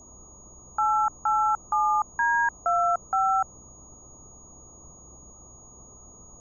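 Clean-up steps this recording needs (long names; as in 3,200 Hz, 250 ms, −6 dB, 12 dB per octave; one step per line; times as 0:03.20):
hum removal 62.7 Hz, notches 7
notch filter 6,700 Hz, Q 30
noise reduction from a noise print 23 dB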